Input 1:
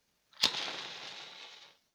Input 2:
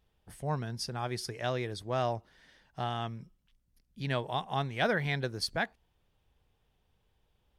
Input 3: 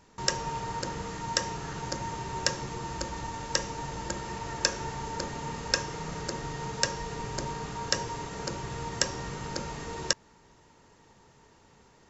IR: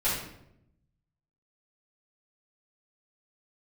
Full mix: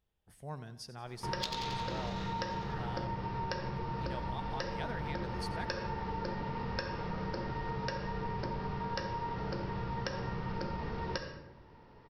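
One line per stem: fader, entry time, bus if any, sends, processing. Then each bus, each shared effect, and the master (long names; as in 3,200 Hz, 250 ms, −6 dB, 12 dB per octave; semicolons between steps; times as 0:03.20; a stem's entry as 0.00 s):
−1.5 dB, 1.00 s, no send, echo send −6 dB, no processing
−10.0 dB, 0.00 s, no send, echo send −15.5 dB, no processing
−1.5 dB, 1.05 s, send −12 dB, no echo send, Butterworth low-pass 5,500 Hz 96 dB per octave; high-shelf EQ 2,900 Hz −11.5 dB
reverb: on, RT60 0.80 s, pre-delay 4 ms
echo: repeating echo 90 ms, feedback 54%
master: downward compressor 6 to 1, threshold −33 dBFS, peak gain reduction 11 dB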